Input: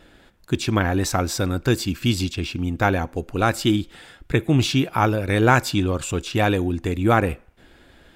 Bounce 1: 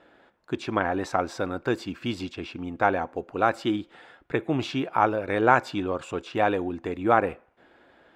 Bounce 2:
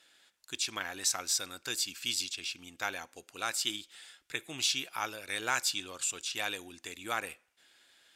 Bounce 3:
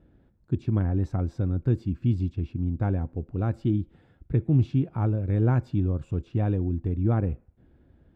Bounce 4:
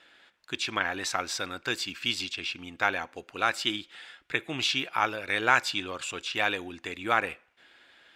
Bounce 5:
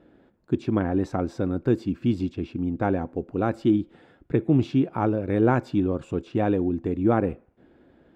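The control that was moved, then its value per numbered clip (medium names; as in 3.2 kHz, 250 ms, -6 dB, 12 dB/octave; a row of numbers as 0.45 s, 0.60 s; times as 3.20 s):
band-pass filter, frequency: 800 Hz, 7.2 kHz, 100 Hz, 2.6 kHz, 290 Hz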